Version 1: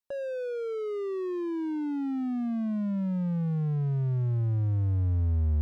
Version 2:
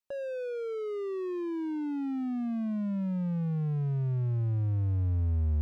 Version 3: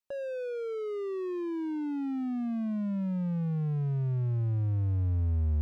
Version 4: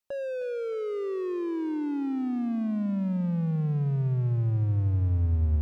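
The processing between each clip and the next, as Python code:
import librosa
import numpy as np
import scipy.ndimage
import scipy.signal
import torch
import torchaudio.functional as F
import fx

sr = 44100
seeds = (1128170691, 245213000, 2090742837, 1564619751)

y1 = fx.peak_eq(x, sr, hz=2500.0, db=4.0, octaves=0.22)
y1 = F.gain(torch.from_numpy(y1), -2.0).numpy()
y2 = y1
y3 = fx.echo_feedback(y2, sr, ms=310, feedback_pct=55, wet_db=-14)
y3 = F.gain(torch.from_numpy(y3), 3.0).numpy()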